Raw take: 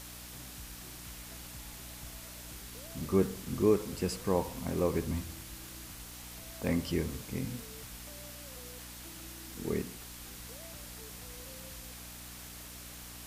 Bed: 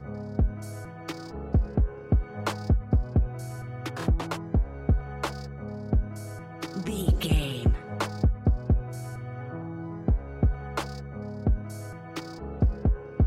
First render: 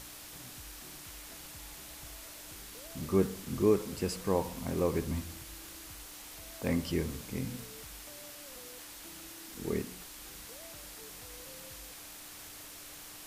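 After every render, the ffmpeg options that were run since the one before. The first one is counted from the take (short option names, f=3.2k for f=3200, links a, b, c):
-af "bandreject=f=60:t=h:w=4,bandreject=f=120:t=h:w=4,bandreject=f=180:t=h:w=4,bandreject=f=240:t=h:w=4"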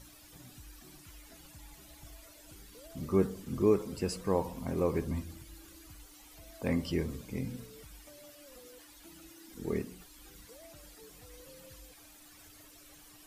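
-af "afftdn=nr=13:nf=-49"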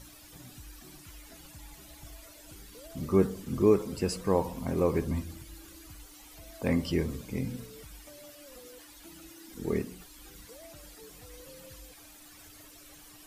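-af "volume=3.5dB"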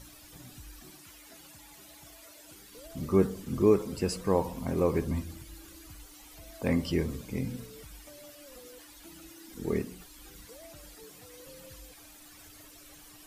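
-filter_complex "[0:a]asettb=1/sr,asplit=3[a][b][c];[a]atrim=end=0.904[d];[b]atrim=start=0.9:end=2.74,asetpts=PTS-STARTPTS,afade=t=in:d=0.004:c=qsin,afade=t=out:st=1.836:d=0.004:c=qsin,highpass=f=240:p=1[e];[c]atrim=start=2.736[f];[d][e]acrossfade=d=0.004:c1=hsin:c2=qsin[g];[g][f]acrossfade=d=0.004:c1=qsin:c2=hsin,asettb=1/sr,asplit=3[h][i][j];[h]atrim=end=11.044[k];[i]atrim=start=11.04:end=11.46,asetpts=PTS-STARTPTS,afade=t=in:d=0.004:c=qsin,afade=t=out:st=0.416:d=0.004:c=qsin,highpass=110[l];[j]atrim=start=11.456[m];[k][l]acrossfade=d=0.004:c1=hsin:c2=qsin[n];[n][m]acrossfade=d=0.004:c1=qsin:c2=hsin"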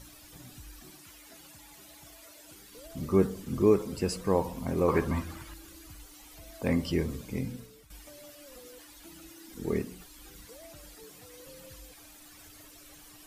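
-filter_complex "[0:a]asettb=1/sr,asplit=3[a][b][c];[a]atrim=end=4.884[d];[b]atrim=start=4.88:end=5.54,asetpts=PTS-STARTPTS,afade=t=in:d=0.004:c=qsin,afade=t=out:st=0.656:d=0.004:c=qsin,equalizer=f=1.2k:w=0.73:g=13[e];[c]atrim=start=5.536[f];[d][e]acrossfade=d=0.004:c1=hsin:c2=qsin[g];[g][f]acrossfade=d=0.004:c1=qsin:c2=hsin,asplit=2[h][i];[h]atrim=end=7.9,asetpts=PTS-STARTPTS,afade=t=out:st=7.38:d=0.52:silence=0.237137[j];[i]atrim=start=7.9,asetpts=PTS-STARTPTS,afade=t=in:d=0.004:c=hsin:silence=0.237137[k];[j][k]concat=n=2:v=0:a=1"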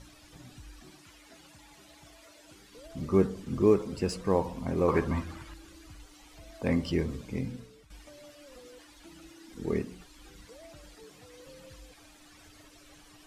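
-af "acrusher=bits=9:mode=log:mix=0:aa=0.000001,adynamicsmooth=sensitivity=5.5:basefreq=7.5k"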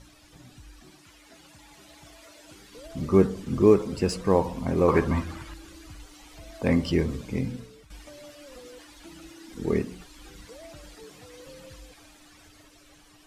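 -af "dynaudnorm=f=250:g=13:m=5dB"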